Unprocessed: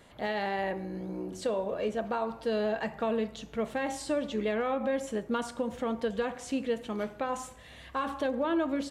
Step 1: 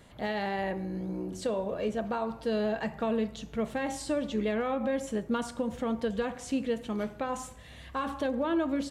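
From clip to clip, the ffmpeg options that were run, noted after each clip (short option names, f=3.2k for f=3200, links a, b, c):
-af "bass=f=250:g=6,treble=f=4k:g=2,volume=-1dB"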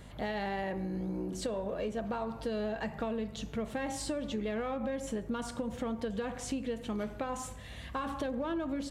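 -filter_complex "[0:a]asplit=2[a][b];[b]asoftclip=type=tanh:threshold=-37.5dB,volume=-11dB[c];[a][c]amix=inputs=2:normalize=0,acompressor=threshold=-32dB:ratio=6,aeval=exprs='val(0)+0.00316*(sin(2*PI*50*n/s)+sin(2*PI*2*50*n/s)/2+sin(2*PI*3*50*n/s)/3+sin(2*PI*4*50*n/s)/4+sin(2*PI*5*50*n/s)/5)':c=same"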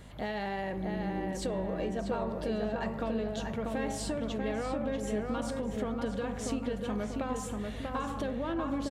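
-filter_complex "[0:a]asplit=2[a][b];[b]adelay=640,lowpass=f=2.3k:p=1,volume=-3dB,asplit=2[c][d];[d]adelay=640,lowpass=f=2.3k:p=1,volume=0.49,asplit=2[e][f];[f]adelay=640,lowpass=f=2.3k:p=1,volume=0.49,asplit=2[g][h];[h]adelay=640,lowpass=f=2.3k:p=1,volume=0.49,asplit=2[i][j];[j]adelay=640,lowpass=f=2.3k:p=1,volume=0.49,asplit=2[k][l];[l]adelay=640,lowpass=f=2.3k:p=1,volume=0.49[m];[a][c][e][g][i][k][m]amix=inputs=7:normalize=0"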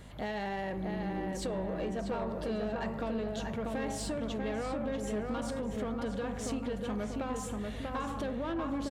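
-af "asoftclip=type=tanh:threshold=-27dB"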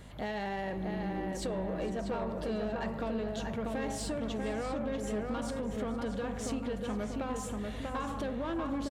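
-af "aecho=1:1:457:0.126"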